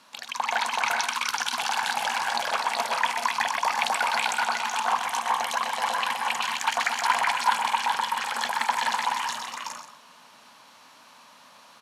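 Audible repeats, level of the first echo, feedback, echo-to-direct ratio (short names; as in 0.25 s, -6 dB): 6, -9.5 dB, no steady repeat, 1.0 dB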